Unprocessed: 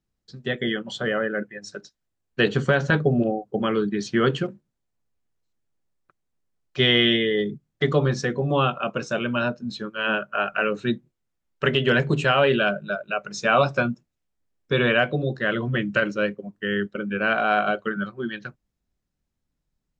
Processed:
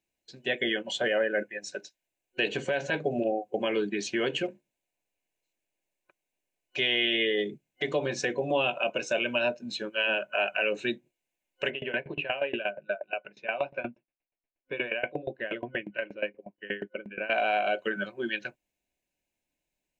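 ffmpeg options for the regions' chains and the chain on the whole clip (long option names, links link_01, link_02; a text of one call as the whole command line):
ffmpeg -i in.wav -filter_complex "[0:a]asettb=1/sr,asplit=3[link_01][link_02][link_03];[link_01]atrim=end=11.704[link_04];[link_02]atrim=start=11.7:end=17.3,asetpts=PTS-STARTPTS,afade=type=in:duration=0.004:curve=qsin,afade=type=out:start_time=5.596:duration=0.004:curve=qsin,lowpass=frequency=2700:width=0.5412,lowpass=frequency=2700:width=1.3066,aeval=exprs='val(0)*pow(10,-23*if(lt(mod(8.4*n/s,1),2*abs(8.4)/1000),1-mod(8.4*n/s,1)/(2*abs(8.4)/1000),(mod(8.4*n/s,1)-2*abs(8.4)/1000)/(1-2*abs(8.4)/1000))/20)':channel_layout=same[link_05];[link_03]atrim=start=17.296[link_06];[link_04][link_05]acrossfade=duration=0.004:curve1=hsin:curve2=qsin[link_07];[link_07][link_06]acrossfade=duration=0.004:curve1=qsin:curve2=hsin,superequalizer=6b=1.41:8b=1.58:10b=0.282:12b=2.51:14b=0.631,alimiter=limit=-15.5dB:level=0:latency=1:release=154,bass=frequency=250:gain=-15,treble=frequency=4000:gain=3" out.wav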